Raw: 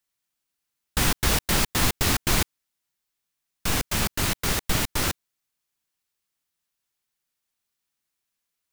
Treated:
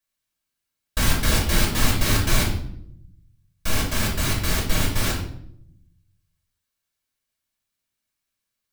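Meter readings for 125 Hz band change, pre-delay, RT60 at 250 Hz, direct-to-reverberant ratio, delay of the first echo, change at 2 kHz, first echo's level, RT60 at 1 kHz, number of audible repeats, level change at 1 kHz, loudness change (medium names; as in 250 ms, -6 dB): +5.0 dB, 3 ms, 1.2 s, -4.0 dB, no echo, +1.5 dB, no echo, 0.60 s, no echo, 0.0 dB, +1.0 dB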